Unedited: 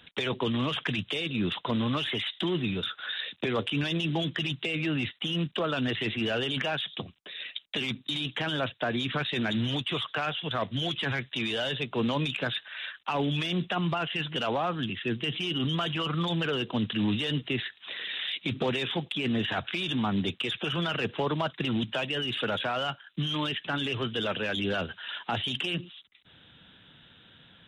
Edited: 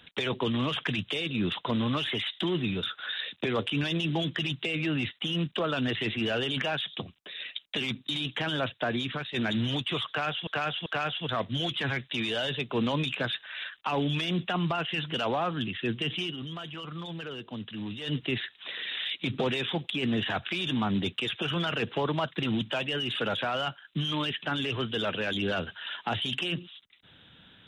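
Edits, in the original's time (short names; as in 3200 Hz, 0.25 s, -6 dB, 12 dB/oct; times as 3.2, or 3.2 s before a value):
8.94–9.34 fade out, to -9.5 dB
10.08–10.47 loop, 3 plays
15.43–17.37 dip -9.5 dB, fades 0.15 s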